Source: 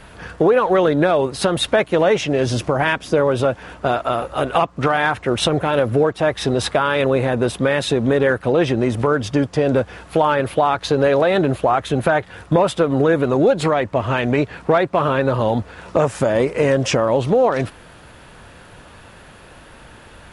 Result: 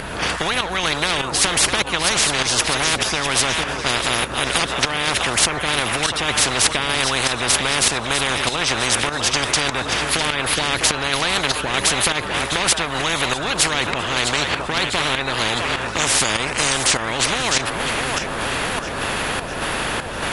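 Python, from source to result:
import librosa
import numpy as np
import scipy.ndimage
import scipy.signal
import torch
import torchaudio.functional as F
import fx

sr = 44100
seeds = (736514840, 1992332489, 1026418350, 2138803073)

y = fx.echo_split(x, sr, split_hz=420.0, low_ms=456, high_ms=653, feedback_pct=52, wet_db=-15.0)
y = fx.volume_shaper(y, sr, bpm=99, per_beat=1, depth_db=-11, release_ms=222.0, shape='slow start')
y = fx.spectral_comp(y, sr, ratio=10.0)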